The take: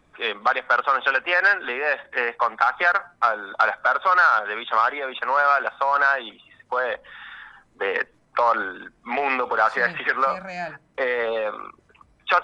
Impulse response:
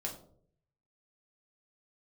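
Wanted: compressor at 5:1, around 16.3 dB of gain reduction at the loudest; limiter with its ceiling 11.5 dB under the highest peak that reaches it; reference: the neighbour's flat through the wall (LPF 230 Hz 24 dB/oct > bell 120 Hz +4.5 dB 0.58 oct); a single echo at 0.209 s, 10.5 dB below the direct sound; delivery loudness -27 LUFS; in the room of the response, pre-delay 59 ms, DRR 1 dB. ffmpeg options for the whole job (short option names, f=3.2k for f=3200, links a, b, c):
-filter_complex "[0:a]acompressor=threshold=-33dB:ratio=5,alimiter=level_in=4.5dB:limit=-24dB:level=0:latency=1,volume=-4.5dB,aecho=1:1:209:0.299,asplit=2[a][b];[1:a]atrim=start_sample=2205,adelay=59[c];[b][c]afir=irnorm=-1:irlink=0,volume=-1.5dB[d];[a][d]amix=inputs=2:normalize=0,lowpass=f=230:w=0.5412,lowpass=f=230:w=1.3066,equalizer=f=120:t=o:w=0.58:g=4.5,volume=29.5dB"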